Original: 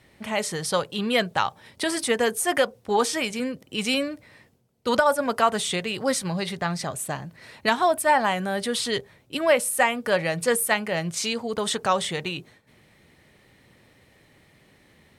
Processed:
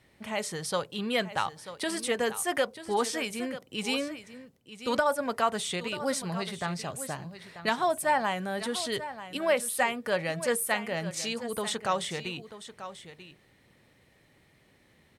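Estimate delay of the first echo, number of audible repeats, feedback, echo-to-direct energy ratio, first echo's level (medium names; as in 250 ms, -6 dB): 939 ms, 1, no regular repeats, -13.0 dB, -13.0 dB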